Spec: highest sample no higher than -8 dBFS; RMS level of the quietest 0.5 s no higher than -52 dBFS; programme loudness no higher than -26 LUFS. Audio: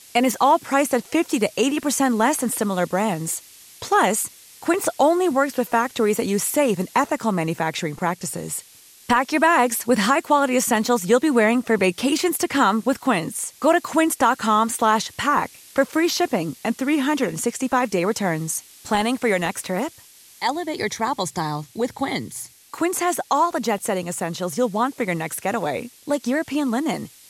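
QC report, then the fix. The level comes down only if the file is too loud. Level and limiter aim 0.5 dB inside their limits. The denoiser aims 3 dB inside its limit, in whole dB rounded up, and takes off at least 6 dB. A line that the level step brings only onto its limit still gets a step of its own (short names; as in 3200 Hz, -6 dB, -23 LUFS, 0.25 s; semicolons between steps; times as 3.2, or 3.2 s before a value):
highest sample -5.5 dBFS: fail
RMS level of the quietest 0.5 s -48 dBFS: fail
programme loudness -21.5 LUFS: fail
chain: gain -5 dB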